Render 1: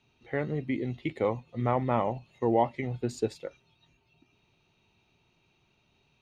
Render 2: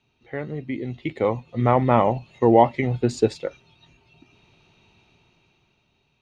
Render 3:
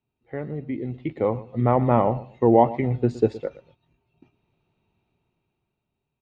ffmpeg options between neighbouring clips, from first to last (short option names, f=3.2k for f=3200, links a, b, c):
-af "lowpass=7.5k,dynaudnorm=f=200:g=13:m=12dB"
-af "lowpass=f=1k:p=1,aecho=1:1:118|236:0.133|0.0293,agate=range=-11dB:threshold=-54dB:ratio=16:detection=peak"